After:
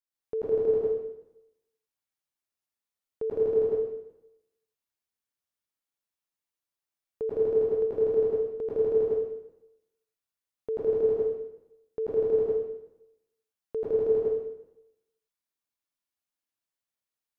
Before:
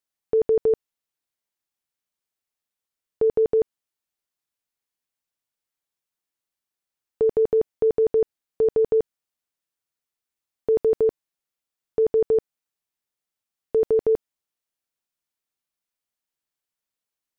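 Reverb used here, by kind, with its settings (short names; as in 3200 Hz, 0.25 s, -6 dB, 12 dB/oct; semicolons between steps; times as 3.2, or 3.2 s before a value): plate-style reverb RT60 0.88 s, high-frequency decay 0.95×, pre-delay 90 ms, DRR -7 dB; gain -11.5 dB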